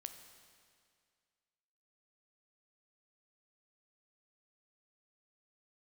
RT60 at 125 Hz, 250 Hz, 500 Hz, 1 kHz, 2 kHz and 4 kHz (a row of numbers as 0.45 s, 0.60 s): 2.1 s, 2.1 s, 2.1 s, 2.1 s, 2.1 s, 2.0 s